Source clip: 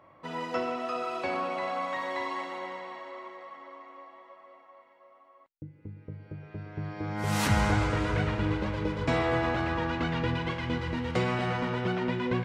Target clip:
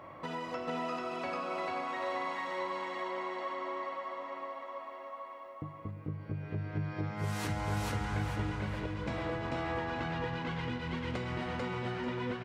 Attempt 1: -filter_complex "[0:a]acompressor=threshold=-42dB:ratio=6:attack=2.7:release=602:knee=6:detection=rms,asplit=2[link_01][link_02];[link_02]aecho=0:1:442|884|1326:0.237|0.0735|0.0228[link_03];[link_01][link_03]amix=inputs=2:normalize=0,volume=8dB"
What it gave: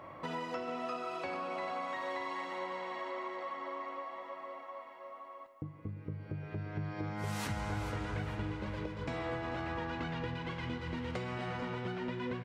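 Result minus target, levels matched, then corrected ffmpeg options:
echo-to-direct −11.5 dB
-filter_complex "[0:a]acompressor=threshold=-42dB:ratio=6:attack=2.7:release=602:knee=6:detection=rms,asplit=2[link_01][link_02];[link_02]aecho=0:1:442|884|1326|1768:0.891|0.276|0.0856|0.0266[link_03];[link_01][link_03]amix=inputs=2:normalize=0,volume=8dB"

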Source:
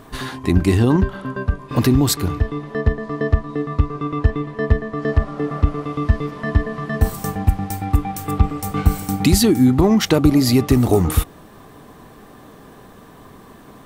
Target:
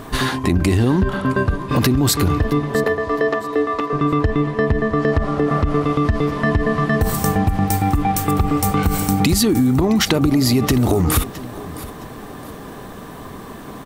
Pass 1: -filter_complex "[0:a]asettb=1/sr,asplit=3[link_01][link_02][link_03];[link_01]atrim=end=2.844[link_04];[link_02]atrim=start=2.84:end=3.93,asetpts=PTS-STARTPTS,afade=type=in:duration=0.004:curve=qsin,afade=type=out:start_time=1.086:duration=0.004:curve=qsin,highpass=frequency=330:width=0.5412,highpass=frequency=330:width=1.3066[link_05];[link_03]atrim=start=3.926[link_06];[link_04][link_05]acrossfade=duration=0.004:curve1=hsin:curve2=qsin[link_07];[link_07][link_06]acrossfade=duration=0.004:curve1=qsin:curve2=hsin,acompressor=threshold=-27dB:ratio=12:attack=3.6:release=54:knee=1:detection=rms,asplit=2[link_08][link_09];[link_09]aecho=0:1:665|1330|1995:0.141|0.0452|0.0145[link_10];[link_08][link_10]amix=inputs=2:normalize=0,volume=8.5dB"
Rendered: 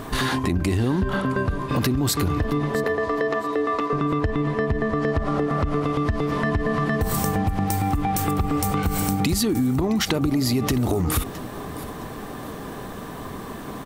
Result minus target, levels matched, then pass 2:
downward compressor: peak gain reduction +6 dB
-filter_complex "[0:a]asettb=1/sr,asplit=3[link_01][link_02][link_03];[link_01]atrim=end=2.844[link_04];[link_02]atrim=start=2.84:end=3.93,asetpts=PTS-STARTPTS,afade=type=in:duration=0.004:curve=qsin,afade=type=out:start_time=1.086:duration=0.004:curve=qsin,highpass=frequency=330:width=0.5412,highpass=frequency=330:width=1.3066[link_05];[link_03]atrim=start=3.926[link_06];[link_04][link_05]acrossfade=duration=0.004:curve1=hsin:curve2=qsin[link_07];[link_07][link_06]acrossfade=duration=0.004:curve1=qsin:curve2=hsin,acompressor=threshold=-20.5dB:ratio=12:attack=3.6:release=54:knee=1:detection=rms,asplit=2[link_08][link_09];[link_09]aecho=0:1:665|1330|1995:0.141|0.0452|0.0145[link_10];[link_08][link_10]amix=inputs=2:normalize=0,volume=8.5dB"

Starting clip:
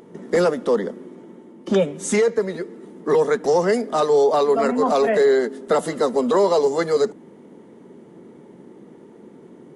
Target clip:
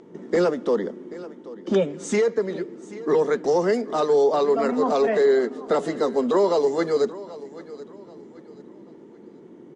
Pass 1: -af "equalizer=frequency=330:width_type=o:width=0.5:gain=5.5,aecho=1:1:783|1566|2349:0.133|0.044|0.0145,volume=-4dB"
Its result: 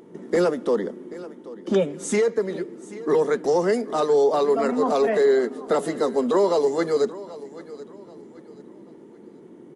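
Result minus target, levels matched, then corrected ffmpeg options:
8,000 Hz band +3.0 dB
-af "lowpass=frequency=7300:width=0.5412,lowpass=frequency=7300:width=1.3066,equalizer=frequency=330:width_type=o:width=0.5:gain=5.5,aecho=1:1:783|1566|2349:0.133|0.044|0.0145,volume=-4dB"

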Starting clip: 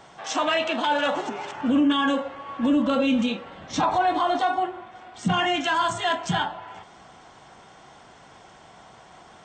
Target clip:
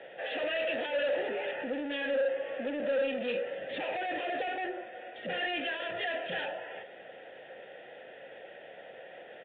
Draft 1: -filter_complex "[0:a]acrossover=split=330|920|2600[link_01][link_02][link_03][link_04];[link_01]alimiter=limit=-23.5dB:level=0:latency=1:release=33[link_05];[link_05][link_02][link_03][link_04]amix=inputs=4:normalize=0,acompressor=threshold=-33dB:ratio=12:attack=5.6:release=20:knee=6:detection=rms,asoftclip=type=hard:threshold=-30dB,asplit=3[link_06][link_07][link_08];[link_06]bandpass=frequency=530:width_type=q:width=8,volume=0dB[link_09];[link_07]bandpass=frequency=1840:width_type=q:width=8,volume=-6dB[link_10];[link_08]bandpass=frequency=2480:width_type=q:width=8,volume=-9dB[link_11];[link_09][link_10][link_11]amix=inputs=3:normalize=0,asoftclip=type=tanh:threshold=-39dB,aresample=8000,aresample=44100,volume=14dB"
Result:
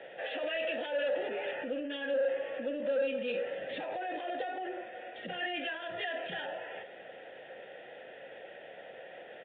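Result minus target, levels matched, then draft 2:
downward compressor: peak gain reduction +9.5 dB
-filter_complex "[0:a]acrossover=split=330|920|2600[link_01][link_02][link_03][link_04];[link_01]alimiter=limit=-23.5dB:level=0:latency=1:release=33[link_05];[link_05][link_02][link_03][link_04]amix=inputs=4:normalize=0,acompressor=threshold=-22.5dB:ratio=12:attack=5.6:release=20:knee=6:detection=rms,asoftclip=type=hard:threshold=-30dB,asplit=3[link_06][link_07][link_08];[link_06]bandpass=frequency=530:width_type=q:width=8,volume=0dB[link_09];[link_07]bandpass=frequency=1840:width_type=q:width=8,volume=-6dB[link_10];[link_08]bandpass=frequency=2480:width_type=q:width=8,volume=-9dB[link_11];[link_09][link_10][link_11]amix=inputs=3:normalize=0,asoftclip=type=tanh:threshold=-39dB,aresample=8000,aresample=44100,volume=14dB"

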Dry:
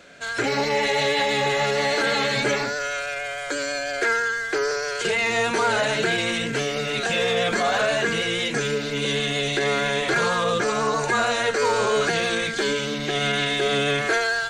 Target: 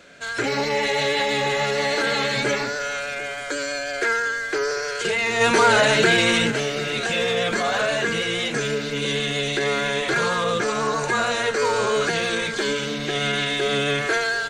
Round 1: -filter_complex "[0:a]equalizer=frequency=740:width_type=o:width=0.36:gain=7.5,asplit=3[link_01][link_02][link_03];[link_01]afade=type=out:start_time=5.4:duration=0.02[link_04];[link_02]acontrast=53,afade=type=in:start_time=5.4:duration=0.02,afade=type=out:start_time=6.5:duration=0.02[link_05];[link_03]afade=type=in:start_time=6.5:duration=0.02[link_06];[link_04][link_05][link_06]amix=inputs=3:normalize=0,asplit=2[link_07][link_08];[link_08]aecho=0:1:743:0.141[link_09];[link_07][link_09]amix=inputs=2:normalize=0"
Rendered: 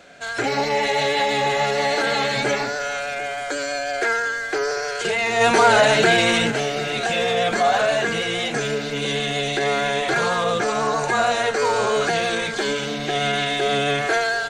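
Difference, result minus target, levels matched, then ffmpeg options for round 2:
1,000 Hz band +3.0 dB
-filter_complex "[0:a]equalizer=frequency=740:width_type=o:width=0.36:gain=-2.5,asplit=3[link_01][link_02][link_03];[link_01]afade=type=out:start_time=5.4:duration=0.02[link_04];[link_02]acontrast=53,afade=type=in:start_time=5.4:duration=0.02,afade=type=out:start_time=6.5:duration=0.02[link_05];[link_03]afade=type=in:start_time=6.5:duration=0.02[link_06];[link_04][link_05][link_06]amix=inputs=3:normalize=0,asplit=2[link_07][link_08];[link_08]aecho=0:1:743:0.141[link_09];[link_07][link_09]amix=inputs=2:normalize=0"

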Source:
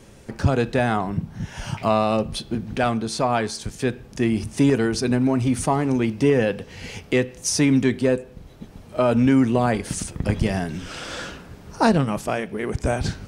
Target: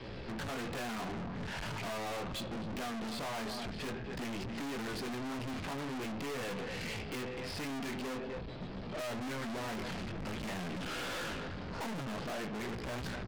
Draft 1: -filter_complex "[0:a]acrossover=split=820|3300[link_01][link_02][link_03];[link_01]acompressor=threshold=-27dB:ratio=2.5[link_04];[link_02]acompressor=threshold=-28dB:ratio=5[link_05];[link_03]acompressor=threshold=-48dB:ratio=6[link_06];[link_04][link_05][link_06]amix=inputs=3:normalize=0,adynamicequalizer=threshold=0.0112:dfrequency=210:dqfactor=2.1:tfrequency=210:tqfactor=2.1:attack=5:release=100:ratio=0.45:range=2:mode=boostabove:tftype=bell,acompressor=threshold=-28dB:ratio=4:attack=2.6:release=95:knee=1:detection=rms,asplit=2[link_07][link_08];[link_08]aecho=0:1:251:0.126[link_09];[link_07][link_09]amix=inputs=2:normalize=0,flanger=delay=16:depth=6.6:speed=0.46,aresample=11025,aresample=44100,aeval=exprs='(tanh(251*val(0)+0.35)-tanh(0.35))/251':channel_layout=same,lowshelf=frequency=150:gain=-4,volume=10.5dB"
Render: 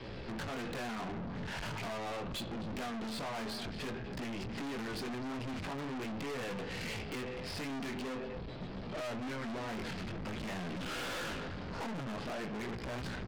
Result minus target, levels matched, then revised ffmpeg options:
downward compressor: peak gain reduction +10.5 dB
-filter_complex "[0:a]acrossover=split=820|3300[link_01][link_02][link_03];[link_01]acompressor=threshold=-27dB:ratio=2.5[link_04];[link_02]acompressor=threshold=-28dB:ratio=5[link_05];[link_03]acompressor=threshold=-48dB:ratio=6[link_06];[link_04][link_05][link_06]amix=inputs=3:normalize=0,adynamicequalizer=threshold=0.0112:dfrequency=210:dqfactor=2.1:tfrequency=210:tqfactor=2.1:attack=5:release=100:ratio=0.45:range=2:mode=boostabove:tftype=bell,asplit=2[link_07][link_08];[link_08]aecho=0:1:251:0.126[link_09];[link_07][link_09]amix=inputs=2:normalize=0,flanger=delay=16:depth=6.6:speed=0.46,aresample=11025,aresample=44100,aeval=exprs='(tanh(251*val(0)+0.35)-tanh(0.35))/251':channel_layout=same,lowshelf=frequency=150:gain=-4,volume=10.5dB"

